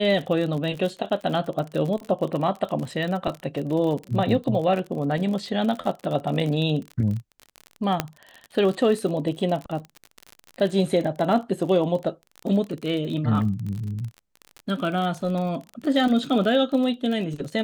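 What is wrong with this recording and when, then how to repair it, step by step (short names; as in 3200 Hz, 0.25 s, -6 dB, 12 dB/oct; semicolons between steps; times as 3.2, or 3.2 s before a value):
crackle 40/s -29 dBFS
8 pop -7 dBFS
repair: de-click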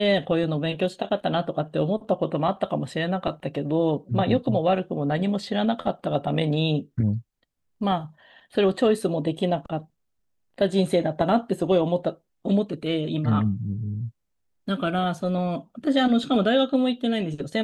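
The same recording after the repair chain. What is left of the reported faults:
none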